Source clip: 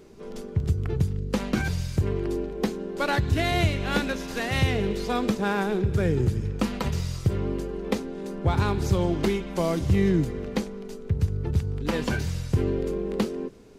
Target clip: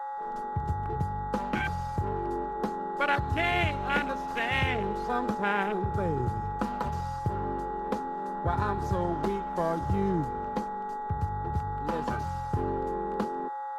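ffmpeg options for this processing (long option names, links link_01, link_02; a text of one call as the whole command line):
ffmpeg -i in.wav -af "aeval=exprs='val(0)+0.0282*sin(2*PI*840*n/s)':channel_layout=same,afwtdn=0.0316,tiltshelf=frequency=750:gain=-6,volume=-2dB" out.wav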